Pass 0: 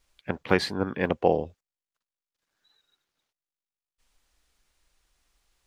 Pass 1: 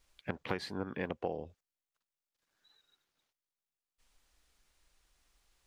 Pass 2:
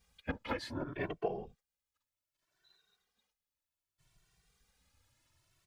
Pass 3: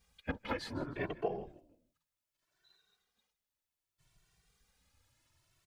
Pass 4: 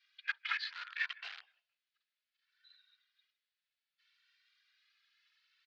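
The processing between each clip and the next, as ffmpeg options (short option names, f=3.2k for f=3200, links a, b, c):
-af "acompressor=threshold=-32dB:ratio=5,volume=-1.5dB"
-filter_complex "[0:a]afftfilt=real='hypot(re,im)*cos(2*PI*random(0))':imag='hypot(re,im)*sin(2*PI*random(1))':win_size=512:overlap=0.75,asplit=2[a][b];[b]adelay=2.1,afreqshift=0.65[c];[a][c]amix=inputs=2:normalize=1,volume=8.5dB"
-filter_complex "[0:a]asplit=4[a][b][c][d];[b]adelay=156,afreqshift=-55,volume=-19dB[e];[c]adelay=312,afreqshift=-110,volume=-27.6dB[f];[d]adelay=468,afreqshift=-165,volume=-36.3dB[g];[a][e][f][g]amix=inputs=4:normalize=0"
-filter_complex "[0:a]asplit=2[a][b];[b]acrusher=bits=5:mix=0:aa=0.000001,volume=-7.5dB[c];[a][c]amix=inputs=2:normalize=0,asuperpass=centerf=2600:order=8:qfactor=0.81,volume=5.5dB"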